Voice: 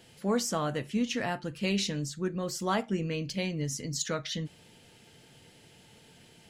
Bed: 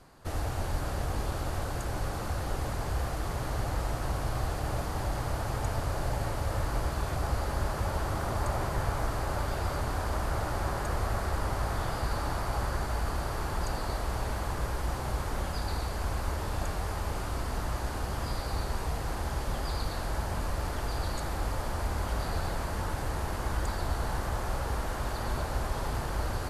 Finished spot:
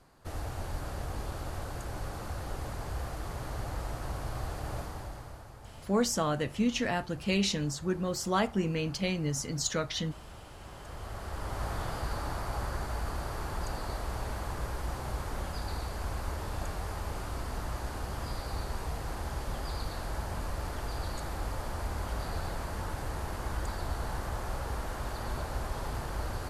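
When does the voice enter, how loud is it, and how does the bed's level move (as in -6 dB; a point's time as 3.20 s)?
5.65 s, +1.0 dB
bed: 4.79 s -5 dB
5.55 s -18 dB
10.55 s -18 dB
11.65 s -3.5 dB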